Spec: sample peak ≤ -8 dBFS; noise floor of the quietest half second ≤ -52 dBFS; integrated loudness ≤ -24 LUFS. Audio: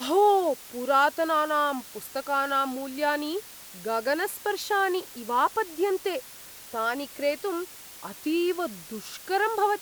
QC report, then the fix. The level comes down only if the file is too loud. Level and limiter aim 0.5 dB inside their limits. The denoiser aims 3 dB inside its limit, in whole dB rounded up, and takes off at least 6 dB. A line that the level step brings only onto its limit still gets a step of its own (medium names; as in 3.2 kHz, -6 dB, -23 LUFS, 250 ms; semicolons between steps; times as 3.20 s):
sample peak -11.0 dBFS: pass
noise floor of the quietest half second -45 dBFS: fail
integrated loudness -27.0 LUFS: pass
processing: noise reduction 10 dB, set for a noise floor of -45 dBFS